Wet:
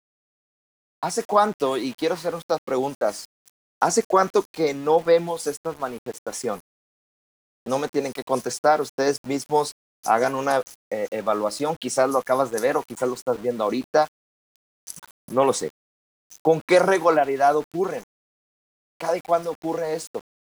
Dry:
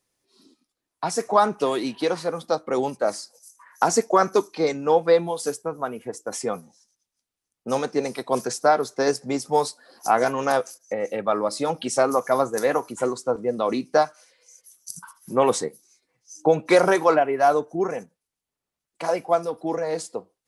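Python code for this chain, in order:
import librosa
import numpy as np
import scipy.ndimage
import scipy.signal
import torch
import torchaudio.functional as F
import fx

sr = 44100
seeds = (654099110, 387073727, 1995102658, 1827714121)

y = np.where(np.abs(x) >= 10.0 ** (-38.0 / 20.0), x, 0.0)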